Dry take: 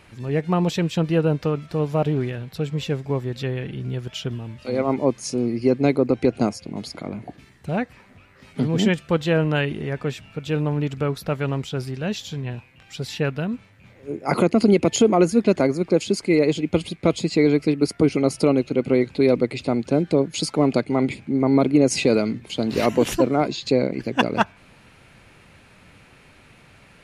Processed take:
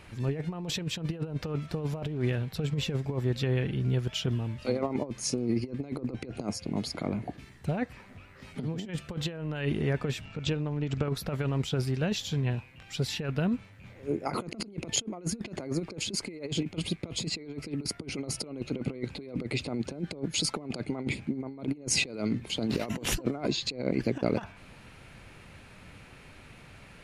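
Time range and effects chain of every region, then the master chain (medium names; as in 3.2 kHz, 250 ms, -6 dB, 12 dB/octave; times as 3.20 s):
10.25–11.08 s: steep low-pass 7.8 kHz + compression 5:1, threshold -29 dBFS + transient shaper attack +12 dB, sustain +4 dB
whole clip: bass shelf 83 Hz +6 dB; compressor with a negative ratio -24 dBFS, ratio -0.5; trim -6 dB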